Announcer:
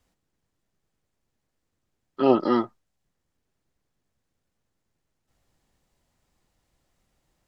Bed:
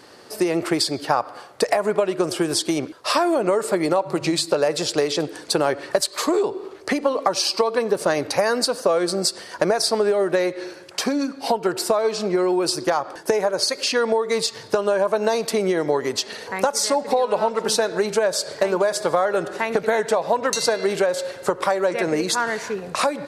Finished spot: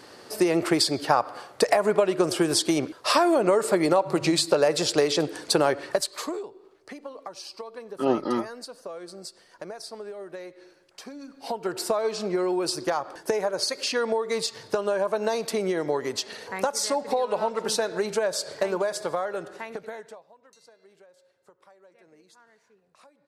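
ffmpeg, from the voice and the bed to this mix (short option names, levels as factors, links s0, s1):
-filter_complex "[0:a]adelay=5800,volume=0.596[s0];[1:a]volume=4.22,afade=t=out:st=5.6:d=0.89:silence=0.125893,afade=t=in:st=11.22:d=0.62:silence=0.211349,afade=t=out:st=18.65:d=1.62:silence=0.0334965[s1];[s0][s1]amix=inputs=2:normalize=0"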